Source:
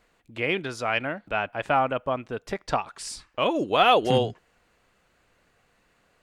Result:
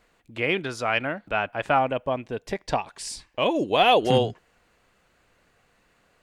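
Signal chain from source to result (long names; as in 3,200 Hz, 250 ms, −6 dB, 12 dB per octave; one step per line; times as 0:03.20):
0:01.78–0:04.00: parametric band 1,300 Hz −11 dB 0.32 octaves
level +1.5 dB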